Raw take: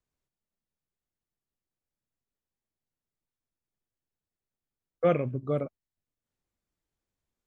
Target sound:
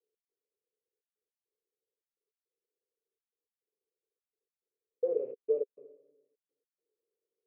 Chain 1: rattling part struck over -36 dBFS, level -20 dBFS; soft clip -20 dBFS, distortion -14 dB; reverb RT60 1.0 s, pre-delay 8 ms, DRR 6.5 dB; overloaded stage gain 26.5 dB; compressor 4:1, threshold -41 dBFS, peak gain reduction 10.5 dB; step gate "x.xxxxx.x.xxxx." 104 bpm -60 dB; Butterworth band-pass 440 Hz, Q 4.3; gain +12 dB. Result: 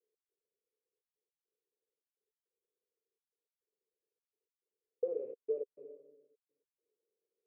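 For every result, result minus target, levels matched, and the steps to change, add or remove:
compressor: peak gain reduction +10.5 dB; soft clip: distortion -9 dB
remove: compressor 4:1, threshold -41 dBFS, peak gain reduction 10.5 dB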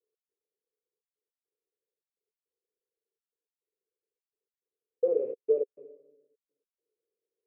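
soft clip: distortion -9 dB
change: soft clip -31.5 dBFS, distortion -5 dB

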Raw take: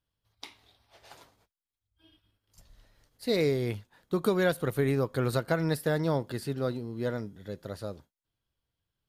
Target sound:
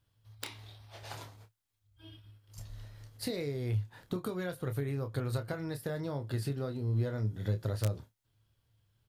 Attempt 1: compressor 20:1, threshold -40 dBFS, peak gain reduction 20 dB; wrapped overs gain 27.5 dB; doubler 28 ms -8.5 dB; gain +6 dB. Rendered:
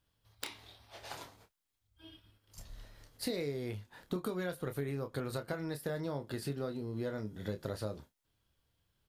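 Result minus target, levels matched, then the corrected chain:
125 Hz band -5.0 dB
compressor 20:1, threshold -40 dBFS, peak gain reduction 20 dB; bell 110 Hz +14.5 dB 0.41 oct; wrapped overs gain 27.5 dB; doubler 28 ms -8.5 dB; gain +6 dB

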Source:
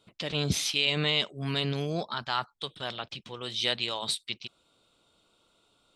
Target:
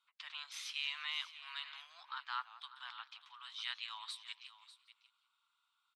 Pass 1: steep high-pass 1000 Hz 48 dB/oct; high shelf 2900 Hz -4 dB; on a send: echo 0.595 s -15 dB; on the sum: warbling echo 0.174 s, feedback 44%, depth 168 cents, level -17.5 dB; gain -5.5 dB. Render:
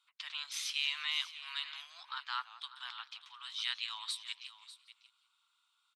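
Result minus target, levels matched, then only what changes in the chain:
8000 Hz band +3.5 dB
change: high shelf 2900 Hz -14.5 dB

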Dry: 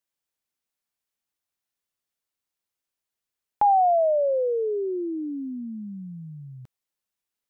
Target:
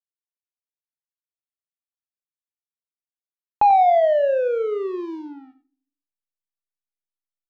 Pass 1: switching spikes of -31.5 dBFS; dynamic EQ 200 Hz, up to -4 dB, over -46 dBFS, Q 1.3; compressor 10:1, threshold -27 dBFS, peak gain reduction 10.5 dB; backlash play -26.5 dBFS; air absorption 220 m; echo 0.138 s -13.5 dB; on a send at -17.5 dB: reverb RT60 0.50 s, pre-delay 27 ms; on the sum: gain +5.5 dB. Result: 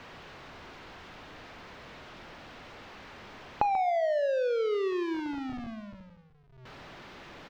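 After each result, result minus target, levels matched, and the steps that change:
compressor: peak gain reduction +10.5 dB; echo 47 ms late; switching spikes: distortion +10 dB
remove: compressor 10:1, threshold -27 dBFS, peak gain reduction 10.5 dB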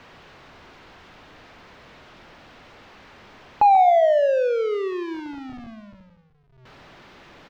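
echo 47 ms late; switching spikes: distortion +10 dB
change: echo 91 ms -13.5 dB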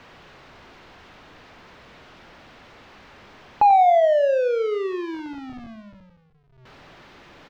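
switching spikes: distortion +10 dB
change: switching spikes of -42 dBFS

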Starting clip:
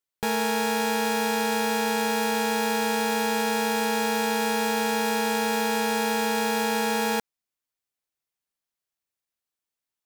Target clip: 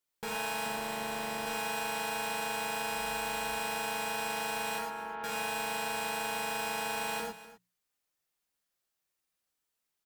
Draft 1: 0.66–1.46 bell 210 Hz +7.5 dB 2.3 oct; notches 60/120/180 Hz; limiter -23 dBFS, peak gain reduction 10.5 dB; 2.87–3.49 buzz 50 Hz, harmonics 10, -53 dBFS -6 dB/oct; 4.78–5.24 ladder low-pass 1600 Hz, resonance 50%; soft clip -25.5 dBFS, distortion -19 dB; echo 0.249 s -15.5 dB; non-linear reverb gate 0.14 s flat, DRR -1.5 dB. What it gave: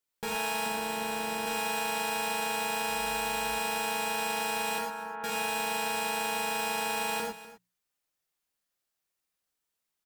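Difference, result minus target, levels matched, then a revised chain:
soft clip: distortion -9 dB
0.66–1.46 bell 210 Hz +7.5 dB 2.3 oct; notches 60/120/180 Hz; limiter -23 dBFS, peak gain reduction 10.5 dB; 2.87–3.49 buzz 50 Hz, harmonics 10, -53 dBFS -6 dB/oct; 4.78–5.24 ladder low-pass 1600 Hz, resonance 50%; soft clip -33 dBFS, distortion -10 dB; echo 0.249 s -15.5 dB; non-linear reverb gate 0.14 s flat, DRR -1.5 dB

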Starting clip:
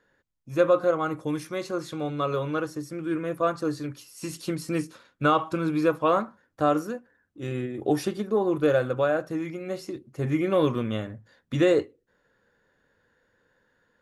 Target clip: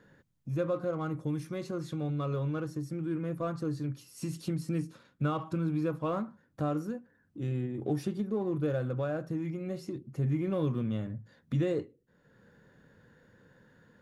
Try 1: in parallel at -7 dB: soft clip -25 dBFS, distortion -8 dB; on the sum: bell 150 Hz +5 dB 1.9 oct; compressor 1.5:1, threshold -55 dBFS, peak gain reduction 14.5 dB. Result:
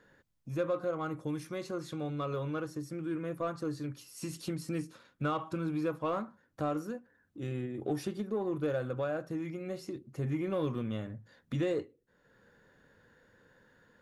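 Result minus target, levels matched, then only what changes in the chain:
125 Hz band -3.5 dB; soft clip: distortion -5 dB
change: soft clip -34.5 dBFS, distortion -3 dB; change: bell 150 Hz +14 dB 1.9 oct

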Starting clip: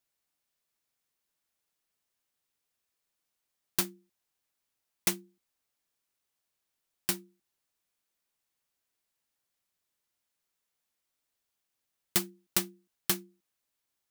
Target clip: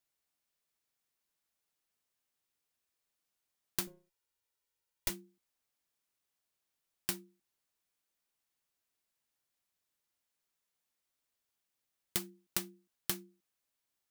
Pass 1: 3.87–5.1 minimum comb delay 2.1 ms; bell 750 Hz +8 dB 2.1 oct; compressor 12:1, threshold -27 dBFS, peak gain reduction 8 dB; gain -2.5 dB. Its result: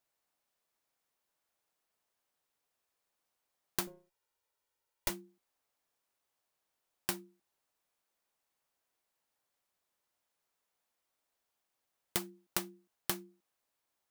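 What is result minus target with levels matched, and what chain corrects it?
1000 Hz band +5.5 dB
3.87–5.1 minimum comb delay 2.1 ms; compressor 12:1, threshold -27 dBFS, peak gain reduction 7 dB; gain -2.5 dB

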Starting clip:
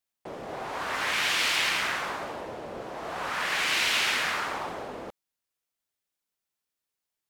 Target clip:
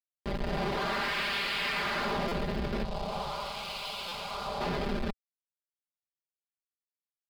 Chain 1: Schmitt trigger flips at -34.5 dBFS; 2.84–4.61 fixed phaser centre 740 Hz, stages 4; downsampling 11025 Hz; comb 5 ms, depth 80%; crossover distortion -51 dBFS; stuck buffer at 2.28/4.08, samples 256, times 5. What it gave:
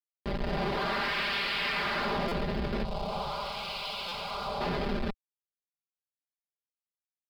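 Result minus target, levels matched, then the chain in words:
crossover distortion: distortion -6 dB
Schmitt trigger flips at -34.5 dBFS; 2.84–4.61 fixed phaser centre 740 Hz, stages 4; downsampling 11025 Hz; comb 5 ms, depth 80%; crossover distortion -44.5 dBFS; stuck buffer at 2.28/4.08, samples 256, times 5

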